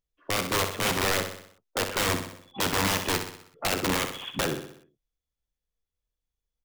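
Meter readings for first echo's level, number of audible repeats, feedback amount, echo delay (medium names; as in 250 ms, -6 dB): -8.0 dB, 5, 52%, 63 ms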